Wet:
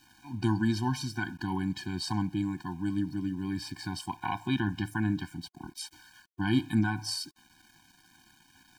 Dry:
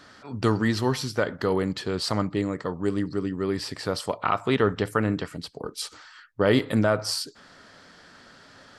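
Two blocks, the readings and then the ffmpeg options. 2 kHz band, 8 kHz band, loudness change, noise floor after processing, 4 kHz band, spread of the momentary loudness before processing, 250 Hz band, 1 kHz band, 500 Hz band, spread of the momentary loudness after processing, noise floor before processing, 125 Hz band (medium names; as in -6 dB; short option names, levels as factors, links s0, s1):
-5.5 dB, -5.5 dB, -6.0 dB, -63 dBFS, -6.0 dB, 12 LU, -3.0 dB, -7.0 dB, -18.0 dB, 13 LU, -52 dBFS, -3.0 dB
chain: -af "aeval=exprs='val(0)*gte(abs(val(0)),0.00473)':c=same,afftfilt=real='re*eq(mod(floor(b*sr/1024/360),2),0)':imag='im*eq(mod(floor(b*sr/1024/360),2),0)':win_size=1024:overlap=0.75,volume=0.708"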